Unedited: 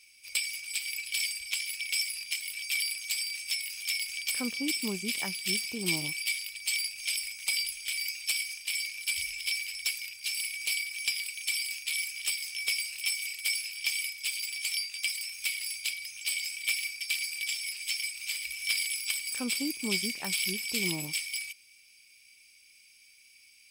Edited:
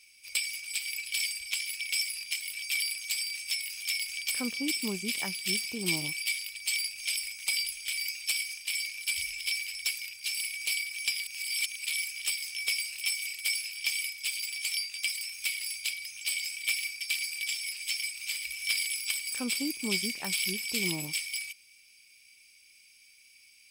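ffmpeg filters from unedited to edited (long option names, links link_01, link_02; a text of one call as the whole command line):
ffmpeg -i in.wav -filter_complex "[0:a]asplit=3[link_01][link_02][link_03];[link_01]atrim=end=11.272[link_04];[link_02]atrim=start=11.268:end=11.862,asetpts=PTS-STARTPTS,areverse[link_05];[link_03]atrim=start=11.858[link_06];[link_04][link_05]acrossfade=duration=0.004:curve1=hsin:curve2=hsin[link_07];[link_07][link_06]acrossfade=duration=0.004:curve1=hsin:curve2=hsin" out.wav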